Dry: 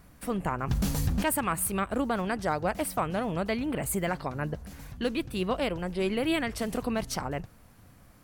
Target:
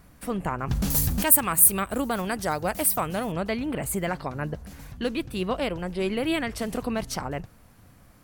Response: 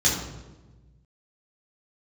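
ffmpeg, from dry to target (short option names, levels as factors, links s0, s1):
-filter_complex "[0:a]asettb=1/sr,asplit=3[s0][s1][s2];[s0]atrim=end=0.904[s3];[s1]atrim=start=0.9:end=3.32,asetpts=PTS-STARTPTS,afade=t=in:d=0.004:c=qsin,afade=t=out:st=2.416:d=0.004:c=qsin,aemphasis=mode=production:type=50fm[s4];[s2]atrim=start=3.316[s5];[s3][s4]acrossfade=d=0.004:c1=hsin:c2=qsin[s6];[s6][s5]acrossfade=d=0.004:c1=qsin:c2=hsin,volume=1.19"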